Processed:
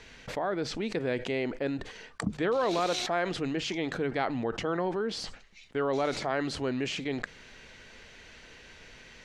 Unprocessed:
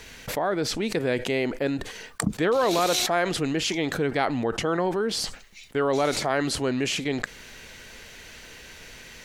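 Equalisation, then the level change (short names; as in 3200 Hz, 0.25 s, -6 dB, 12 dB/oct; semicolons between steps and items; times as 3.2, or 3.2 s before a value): air absorption 89 m; notches 50/100/150 Hz; -5.0 dB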